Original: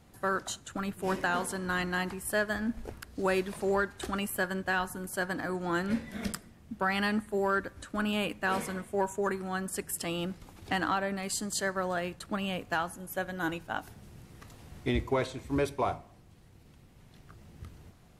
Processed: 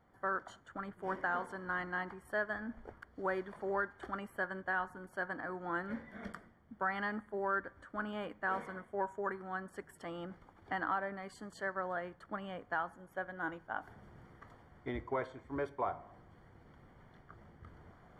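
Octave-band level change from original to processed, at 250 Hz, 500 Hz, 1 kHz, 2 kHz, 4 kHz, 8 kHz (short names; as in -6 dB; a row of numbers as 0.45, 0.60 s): -11.0 dB, -7.5 dB, -4.5 dB, -5.5 dB, -17.5 dB, under -25 dB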